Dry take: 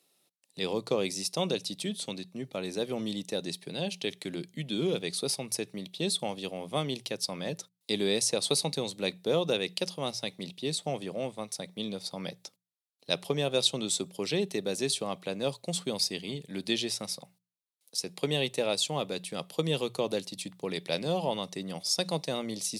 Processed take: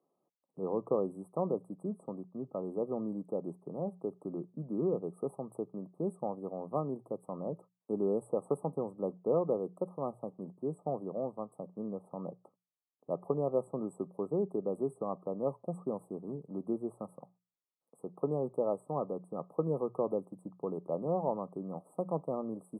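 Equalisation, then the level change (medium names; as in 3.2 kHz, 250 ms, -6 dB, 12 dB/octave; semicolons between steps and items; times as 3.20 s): brick-wall FIR band-stop 1.3–7.7 kHz; distance through air 420 m; peaking EQ 82 Hz -9 dB 1.6 oct; 0.0 dB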